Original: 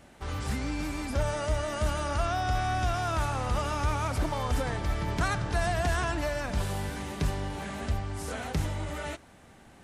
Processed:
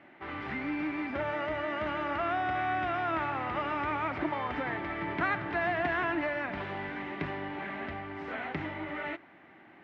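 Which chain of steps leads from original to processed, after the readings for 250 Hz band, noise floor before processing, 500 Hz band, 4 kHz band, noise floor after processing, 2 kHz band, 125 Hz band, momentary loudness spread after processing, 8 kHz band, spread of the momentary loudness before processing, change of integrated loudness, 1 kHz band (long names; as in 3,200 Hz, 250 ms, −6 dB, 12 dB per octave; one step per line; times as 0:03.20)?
0.0 dB, −54 dBFS, −1.5 dB, −7.0 dB, −56 dBFS, +2.5 dB, −13.0 dB, 8 LU, below −30 dB, 7 LU, −2.0 dB, 0.0 dB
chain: loudspeaker in its box 220–2,800 Hz, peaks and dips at 220 Hz −4 dB, 330 Hz +7 dB, 480 Hz −8 dB, 2,000 Hz +7 dB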